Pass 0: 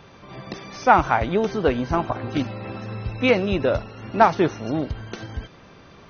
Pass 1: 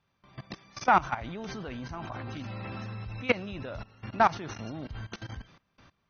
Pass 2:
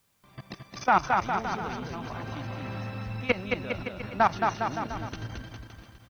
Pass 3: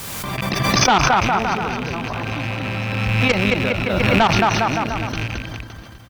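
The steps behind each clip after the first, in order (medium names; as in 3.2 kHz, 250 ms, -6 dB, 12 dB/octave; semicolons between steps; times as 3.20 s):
gate with hold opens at -36 dBFS; peaking EQ 430 Hz -8 dB 1.3 oct; level held to a coarse grid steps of 19 dB
word length cut 12-bit, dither triangular; on a send: bouncing-ball echo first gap 220 ms, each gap 0.85×, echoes 5
rattle on loud lows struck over -38 dBFS, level -27 dBFS; sine folder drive 6 dB, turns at -9.5 dBFS; swell ahead of each attack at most 22 dB/s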